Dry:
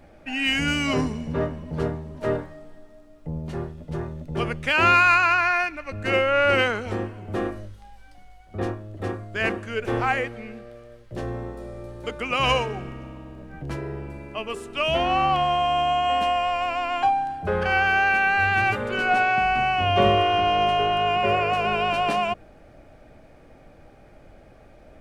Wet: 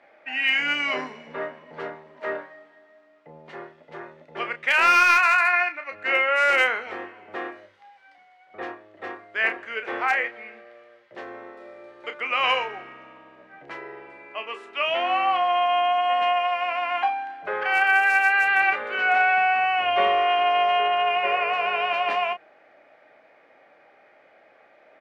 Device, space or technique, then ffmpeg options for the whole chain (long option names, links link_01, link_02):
megaphone: -filter_complex "[0:a]highpass=620,lowpass=3200,equalizer=frequency=2000:width_type=o:width=0.39:gain=7,asoftclip=type=hard:threshold=-11dB,asplit=2[link_01][link_02];[link_02]adelay=31,volume=-9dB[link_03];[link_01][link_03]amix=inputs=2:normalize=0"